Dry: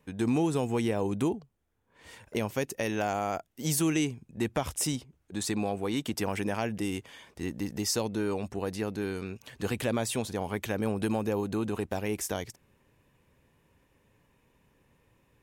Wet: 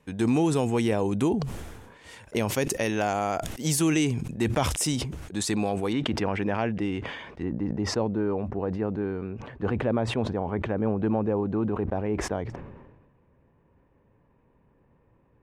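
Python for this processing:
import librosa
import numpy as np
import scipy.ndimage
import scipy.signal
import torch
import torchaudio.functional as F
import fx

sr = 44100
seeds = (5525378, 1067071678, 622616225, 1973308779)

y = fx.lowpass(x, sr, hz=fx.steps((0.0, 11000.0), (5.93, 2500.0), (7.43, 1200.0)), slope=12)
y = fx.sustainer(y, sr, db_per_s=45.0)
y = y * 10.0 ** (3.5 / 20.0)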